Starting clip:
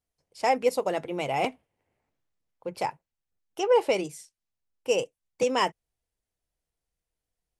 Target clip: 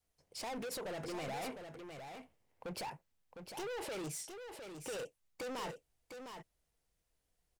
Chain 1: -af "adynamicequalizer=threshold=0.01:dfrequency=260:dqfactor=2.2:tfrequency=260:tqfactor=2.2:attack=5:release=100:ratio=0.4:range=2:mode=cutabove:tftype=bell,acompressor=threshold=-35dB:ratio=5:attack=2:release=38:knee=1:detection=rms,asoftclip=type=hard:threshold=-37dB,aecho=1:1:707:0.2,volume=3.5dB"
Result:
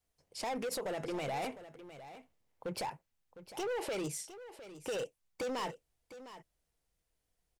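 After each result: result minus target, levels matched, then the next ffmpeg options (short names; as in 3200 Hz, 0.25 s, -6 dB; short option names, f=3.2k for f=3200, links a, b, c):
echo-to-direct -6.5 dB; hard clip: distortion -5 dB
-af "adynamicequalizer=threshold=0.01:dfrequency=260:dqfactor=2.2:tfrequency=260:tqfactor=2.2:attack=5:release=100:ratio=0.4:range=2:mode=cutabove:tftype=bell,acompressor=threshold=-35dB:ratio=5:attack=2:release=38:knee=1:detection=rms,asoftclip=type=hard:threshold=-37dB,aecho=1:1:707:0.422,volume=3.5dB"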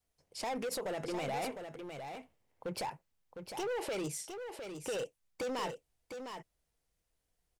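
hard clip: distortion -5 dB
-af "adynamicequalizer=threshold=0.01:dfrequency=260:dqfactor=2.2:tfrequency=260:tqfactor=2.2:attack=5:release=100:ratio=0.4:range=2:mode=cutabove:tftype=bell,acompressor=threshold=-35dB:ratio=5:attack=2:release=38:knee=1:detection=rms,asoftclip=type=hard:threshold=-43.5dB,aecho=1:1:707:0.422,volume=3.5dB"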